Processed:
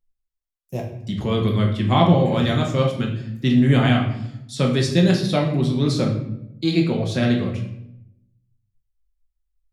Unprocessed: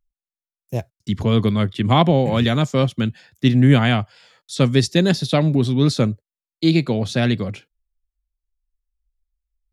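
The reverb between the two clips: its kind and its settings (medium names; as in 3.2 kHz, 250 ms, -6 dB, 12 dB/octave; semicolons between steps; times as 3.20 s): simulated room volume 190 m³, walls mixed, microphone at 1 m; trim -5 dB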